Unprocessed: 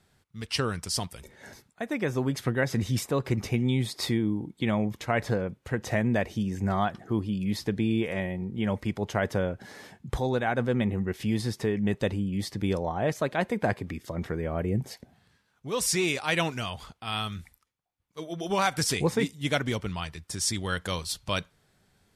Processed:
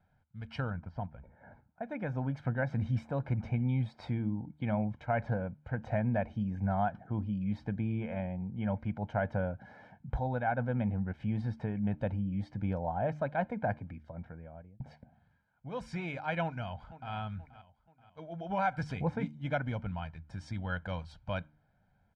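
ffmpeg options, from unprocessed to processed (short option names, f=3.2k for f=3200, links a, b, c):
-filter_complex "[0:a]asettb=1/sr,asplit=3[a][b][c];[a]atrim=end=0.704[d];[b]atrim=start=0.7:end=1.83,asetpts=PTS-STARTPTS,afade=t=in:d=0.004:c=qsin,afade=t=out:st=1.126:d=0.004:c=qsin,lowpass=1.5k[e];[c]atrim=start=1.826[f];[d][e]acrossfade=d=0.004:c1=hsin:c2=qsin[g];[g][f]acrossfade=d=0.004:c1=qsin:c2=hsin,asplit=2[h][i];[i]afade=t=in:st=16.43:d=0.01,afade=t=out:st=17.13:d=0.01,aecho=0:1:480|960|1440|1920:0.177828|0.0800226|0.0360102|0.0162046[j];[h][j]amix=inputs=2:normalize=0,asplit=2[k][l];[k]atrim=end=14.8,asetpts=PTS-STARTPTS,afade=t=out:st=13.47:d=1.33[m];[l]atrim=start=14.8,asetpts=PTS-STARTPTS,afade=t=in:d=0.004:c=hsin[n];[m][n]concat=n=2:v=0:a=1,lowpass=1.5k,aecho=1:1:1.3:0.76,bandreject=f=75.14:t=h:w=4,bandreject=f=150.28:t=h:w=4,bandreject=f=225.42:t=h:w=4,bandreject=f=300.56:t=h:w=4,volume=-6.5dB"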